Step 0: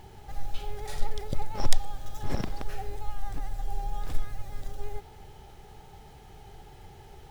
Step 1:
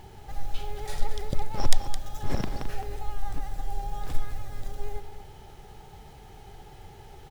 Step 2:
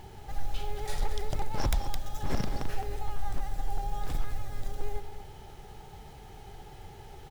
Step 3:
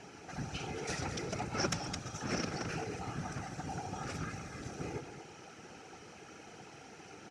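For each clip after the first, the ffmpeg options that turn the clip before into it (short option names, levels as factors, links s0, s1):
-af "aecho=1:1:215:0.299,volume=1.19"
-af "aeval=exprs='0.106*(abs(mod(val(0)/0.106+3,4)-2)-1)':c=same"
-af "afftfilt=real='hypot(re,im)*cos(2*PI*random(0))':imag='hypot(re,im)*sin(2*PI*random(1))':win_size=512:overlap=0.75,highpass=210,equalizer=f=300:t=q:w=4:g=4,equalizer=f=910:t=q:w=4:g=-8,equalizer=f=1400:t=q:w=4:g=9,equalizer=f=2500:t=q:w=4:g=8,equalizer=f=3500:t=q:w=4:g=-6,equalizer=f=5800:t=q:w=4:g=10,lowpass=f=8600:w=0.5412,lowpass=f=8600:w=1.3066,volume=1.78"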